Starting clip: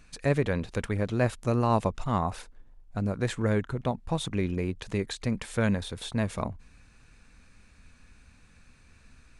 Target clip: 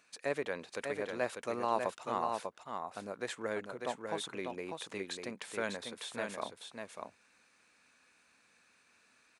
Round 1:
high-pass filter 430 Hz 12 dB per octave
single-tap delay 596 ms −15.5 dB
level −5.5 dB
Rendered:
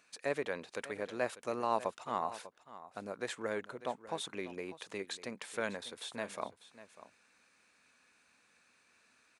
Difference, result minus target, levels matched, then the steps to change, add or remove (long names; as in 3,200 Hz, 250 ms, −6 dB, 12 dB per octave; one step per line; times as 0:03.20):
echo-to-direct −10.5 dB
change: single-tap delay 596 ms −5 dB